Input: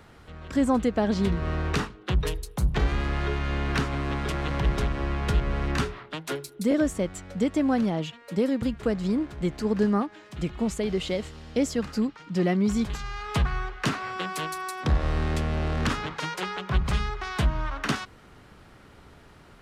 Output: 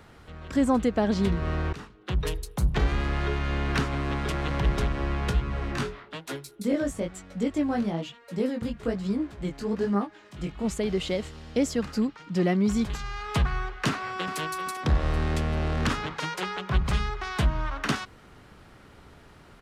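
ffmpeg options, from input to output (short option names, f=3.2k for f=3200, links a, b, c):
-filter_complex "[0:a]asplit=3[a][b][c];[a]afade=t=out:st=5.29:d=0.02[d];[b]flanger=delay=15:depth=6.5:speed=1.1,afade=t=in:st=5.29:d=0.02,afade=t=out:st=10.63:d=0.02[e];[c]afade=t=in:st=10.63:d=0.02[f];[d][e][f]amix=inputs=3:normalize=0,asplit=2[g][h];[h]afade=t=in:st=13.88:d=0.01,afade=t=out:st=14.38:d=0.01,aecho=0:1:390|780|1170|1560:0.281838|0.112735|0.0450941|0.0180377[i];[g][i]amix=inputs=2:normalize=0,asplit=2[j][k];[j]atrim=end=1.73,asetpts=PTS-STARTPTS,afade=t=out:st=1.726:d=0.004:c=hsin:silence=0.105925[l];[k]atrim=start=1.73,asetpts=PTS-STARTPTS,afade=t=in:d=0.61:silence=0.105925[m];[l][m]concat=n=2:v=0:a=1"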